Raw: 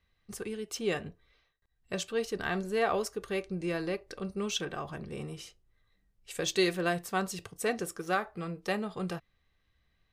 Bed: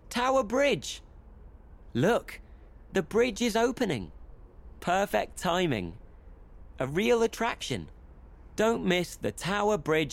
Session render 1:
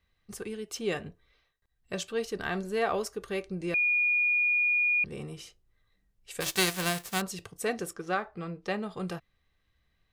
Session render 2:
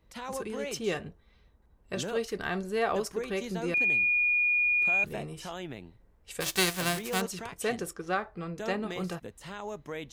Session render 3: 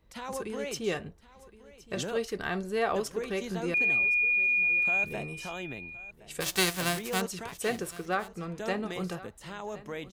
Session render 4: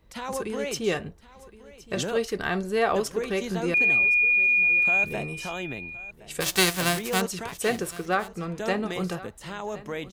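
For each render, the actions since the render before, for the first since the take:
3.74–5.04 bleep 2440 Hz -22.5 dBFS; 6.4–7.2 spectral whitening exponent 0.3; 7.93–8.83 air absorption 71 m
add bed -12.5 dB
echo 1.067 s -18.5 dB
gain +5 dB

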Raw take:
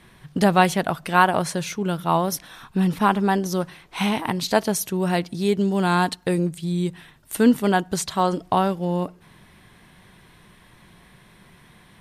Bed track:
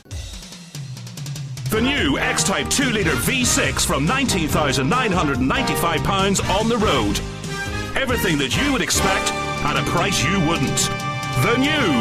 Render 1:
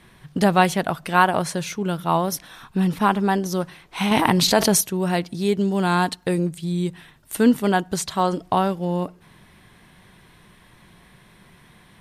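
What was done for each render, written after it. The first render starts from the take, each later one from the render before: 4.11–4.81 fast leveller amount 70%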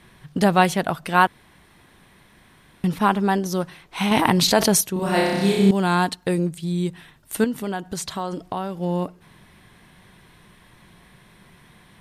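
1.27–2.84 room tone; 4.93–5.71 flutter echo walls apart 5.3 m, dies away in 1.4 s; 7.44–8.78 compressor 3:1, threshold -25 dBFS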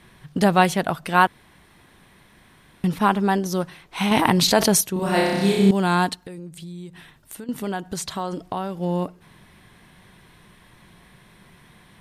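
6.22–7.49 compressor 5:1, threshold -35 dBFS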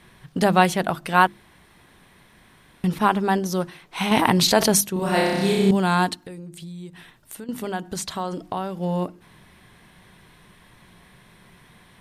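notches 50/100/150/200/250/300/350 Hz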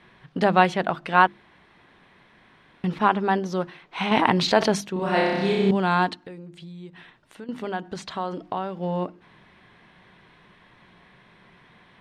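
LPF 3400 Hz 12 dB/oct; low shelf 130 Hz -10.5 dB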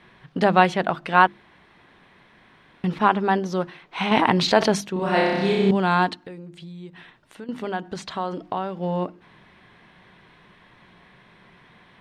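gain +1.5 dB; limiter -2 dBFS, peak gain reduction 2.5 dB

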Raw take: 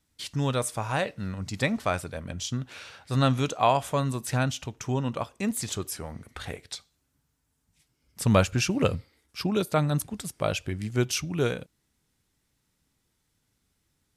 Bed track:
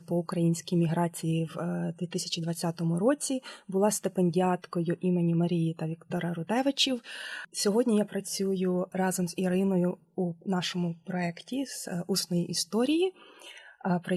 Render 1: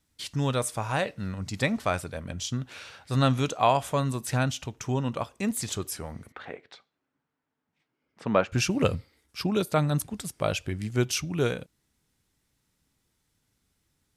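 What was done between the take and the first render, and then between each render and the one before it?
6.32–8.52 BPF 260–2100 Hz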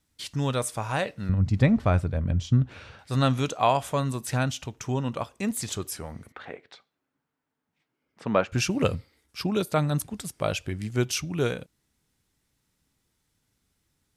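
1.29–2.99 RIAA curve playback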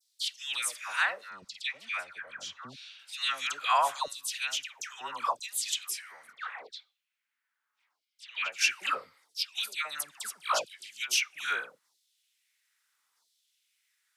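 LFO high-pass saw down 0.76 Hz 960–4700 Hz; dispersion lows, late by 0.132 s, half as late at 1300 Hz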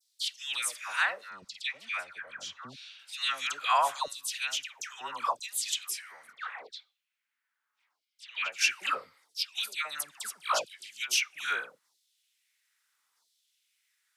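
nothing audible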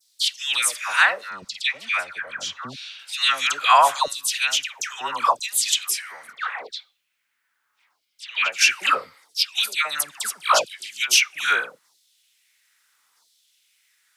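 gain +11 dB; limiter -3 dBFS, peak gain reduction 3 dB

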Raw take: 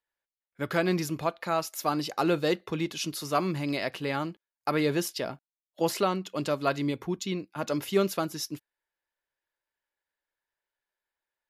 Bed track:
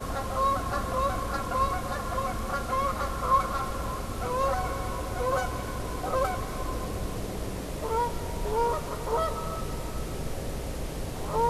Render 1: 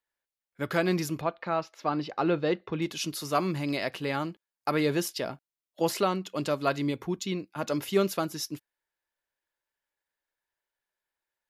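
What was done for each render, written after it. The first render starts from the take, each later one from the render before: 1.21–2.82 air absorption 230 m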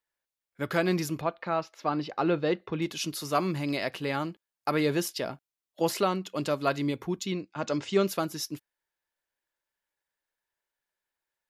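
7.32–8.07 steep low-pass 7900 Hz 48 dB/oct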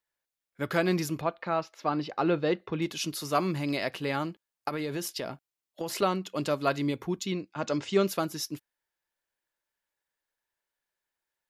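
4.68–6.02 compressor, threshold -29 dBFS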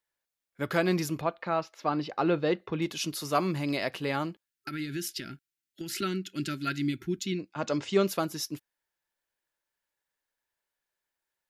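4.45–7.39 spectral gain 400–1300 Hz -21 dB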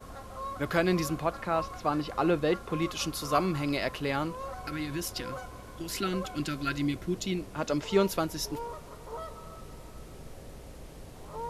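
add bed track -12.5 dB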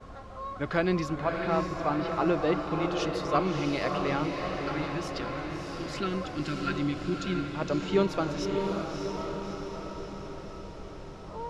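air absorption 120 m; diffused feedback echo 0.629 s, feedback 60%, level -4 dB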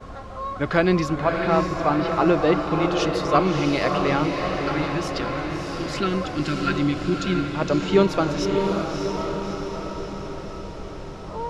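gain +7.5 dB

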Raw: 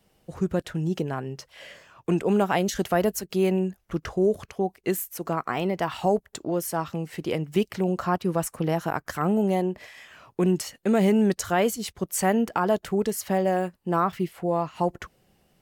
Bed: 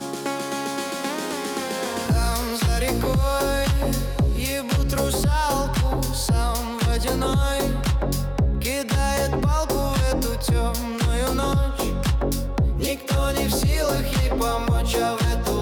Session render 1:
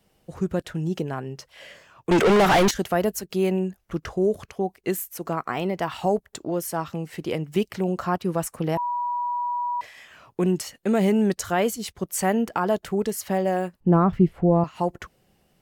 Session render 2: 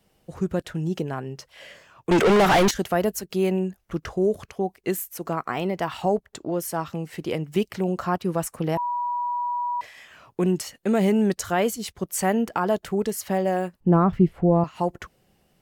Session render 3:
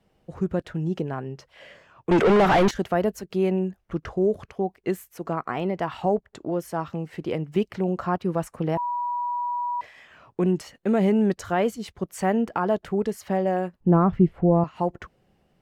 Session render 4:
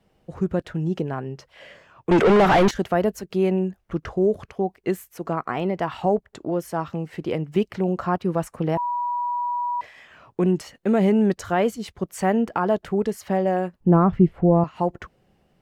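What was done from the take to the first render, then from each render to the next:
2.11–2.71 overdrive pedal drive 35 dB, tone 3200 Hz, clips at -10.5 dBFS; 8.77–9.81 bleep 970 Hz -23.5 dBFS; 13.8–14.64 tilt -4.5 dB/oct
6.02–6.59 high shelf 7300 Hz -7 dB
LPF 2100 Hz 6 dB/oct
gain +2 dB

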